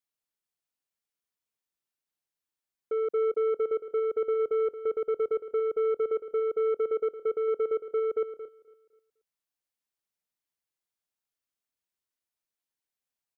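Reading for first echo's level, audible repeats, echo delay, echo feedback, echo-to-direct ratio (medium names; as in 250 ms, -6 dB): -11.0 dB, 4, 224 ms, no regular repeats, -10.5 dB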